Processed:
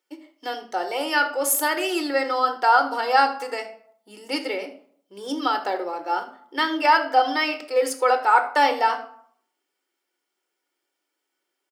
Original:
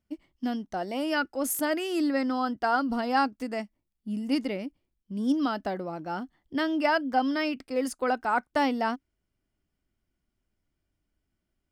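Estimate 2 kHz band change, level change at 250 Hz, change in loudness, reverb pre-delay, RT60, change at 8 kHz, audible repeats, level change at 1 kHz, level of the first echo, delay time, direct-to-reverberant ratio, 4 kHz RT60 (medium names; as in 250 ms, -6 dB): +8.0 dB, -4.0 dB, +6.5 dB, 3 ms, 0.60 s, +9.0 dB, 1, +9.0 dB, -17.0 dB, 78 ms, 6.5 dB, 0.35 s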